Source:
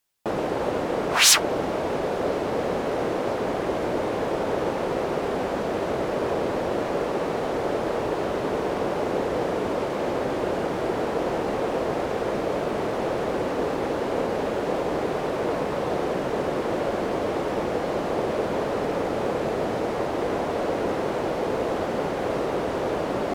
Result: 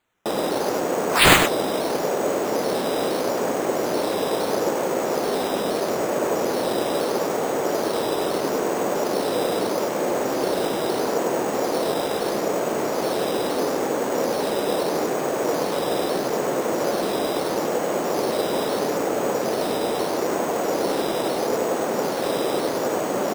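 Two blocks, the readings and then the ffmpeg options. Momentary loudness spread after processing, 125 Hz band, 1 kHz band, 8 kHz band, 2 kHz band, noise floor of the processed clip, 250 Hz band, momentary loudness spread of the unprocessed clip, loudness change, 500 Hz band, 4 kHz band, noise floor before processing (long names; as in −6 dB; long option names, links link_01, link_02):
1 LU, −1.0 dB, +3.0 dB, 0.0 dB, +3.5 dB, −26 dBFS, +2.0 dB, 1 LU, +2.5 dB, +2.5 dB, +2.0 dB, −28 dBFS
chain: -af "highpass=180,acrusher=samples=8:mix=1:aa=0.000001:lfo=1:lforange=4.8:lforate=0.77,aecho=1:1:99:0.473,volume=2dB"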